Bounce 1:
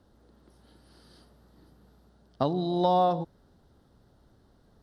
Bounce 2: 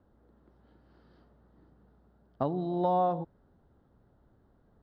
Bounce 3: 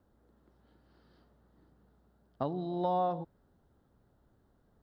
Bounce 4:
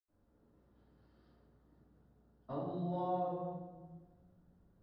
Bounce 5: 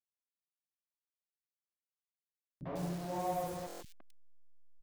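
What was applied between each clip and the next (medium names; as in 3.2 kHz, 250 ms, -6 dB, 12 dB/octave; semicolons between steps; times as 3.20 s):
low-pass 1.9 kHz 12 dB/octave; trim -3.5 dB
treble shelf 2.9 kHz +8.5 dB; trim -4 dB
reverberation RT60 1.3 s, pre-delay 77 ms; in parallel at 0 dB: peak limiter -42 dBFS, peak gain reduction 10.5 dB; on the sum: trim +2 dB
send-on-delta sampling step -42.5 dBFS; three bands offset in time lows, mids, highs 160/260 ms, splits 270/2700 Hz; buffer glitch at 2.47/3.67 s, samples 1024, times 5; trim +1.5 dB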